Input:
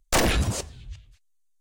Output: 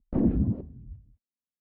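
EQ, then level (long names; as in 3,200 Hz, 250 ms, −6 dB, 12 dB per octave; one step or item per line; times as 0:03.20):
resonant band-pass 240 Hz, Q 2.7
high-frequency loss of the air 310 metres
spectral tilt −4 dB per octave
0.0 dB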